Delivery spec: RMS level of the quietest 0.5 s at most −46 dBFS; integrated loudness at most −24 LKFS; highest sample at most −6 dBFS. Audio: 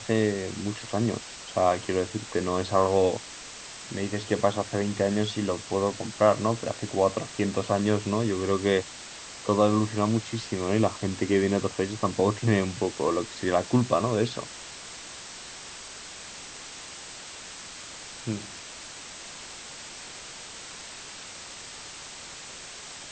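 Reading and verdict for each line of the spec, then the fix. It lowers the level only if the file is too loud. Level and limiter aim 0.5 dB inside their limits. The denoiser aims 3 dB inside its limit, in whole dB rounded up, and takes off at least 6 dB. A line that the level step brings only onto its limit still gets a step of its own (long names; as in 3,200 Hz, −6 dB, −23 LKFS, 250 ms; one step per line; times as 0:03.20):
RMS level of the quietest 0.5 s −42 dBFS: out of spec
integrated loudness −27.0 LKFS: in spec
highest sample −8.0 dBFS: in spec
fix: broadband denoise 7 dB, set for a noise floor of −42 dBFS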